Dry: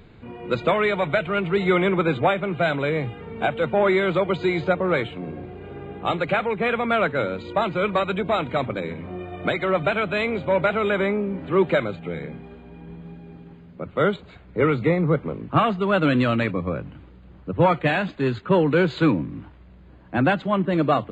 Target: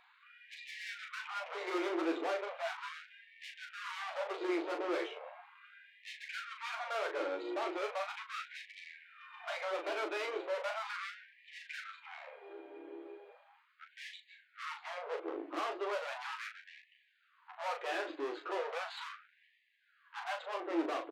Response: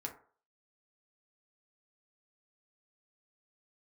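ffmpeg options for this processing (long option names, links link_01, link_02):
-filter_complex "[0:a]asettb=1/sr,asplit=3[link_01][link_02][link_03];[link_01]atrim=end=2.664[link_04];[link_02]atrim=start=2.66:end=4.9,asetpts=PTS-STARTPTS,afade=type=in:duration=0.004:curve=qsin,afade=type=out:start_time=2.236:duration=0.004:curve=qsin,lowshelf=frequency=220:gain=9[link_05];[link_03]atrim=start=4.896[link_06];[link_04][link_05]acrossfade=duration=0.004:curve1=hsin:curve2=qsin[link_07];[link_07][link_06]acrossfade=duration=0.004:curve1=qsin:curve2=hsin,aeval=exprs='(tanh(35.5*val(0)+0.45)-tanh(0.45))/35.5':channel_layout=same,lowpass=frequency=2600:poles=1,equalizer=frequency=330:width_type=o:width=0.33:gain=5,aecho=1:1:12|39:0.501|0.531,afftfilt=real='re*gte(b*sr/1024,260*pow(1700/260,0.5+0.5*sin(2*PI*0.37*pts/sr)))':imag='im*gte(b*sr/1024,260*pow(1700/260,0.5+0.5*sin(2*PI*0.37*pts/sr)))':win_size=1024:overlap=0.75,volume=-4dB"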